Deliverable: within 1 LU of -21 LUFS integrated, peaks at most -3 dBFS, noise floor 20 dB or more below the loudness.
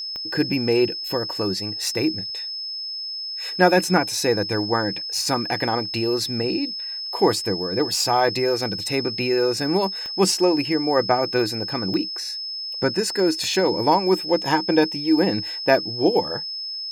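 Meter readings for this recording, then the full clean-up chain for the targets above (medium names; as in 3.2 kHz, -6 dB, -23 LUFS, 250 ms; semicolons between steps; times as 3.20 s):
clicks found 4; steady tone 5.2 kHz; tone level -28 dBFS; loudness -22.0 LUFS; peak level -1.5 dBFS; loudness target -21.0 LUFS
-> de-click; band-stop 5.2 kHz, Q 30; trim +1 dB; peak limiter -3 dBFS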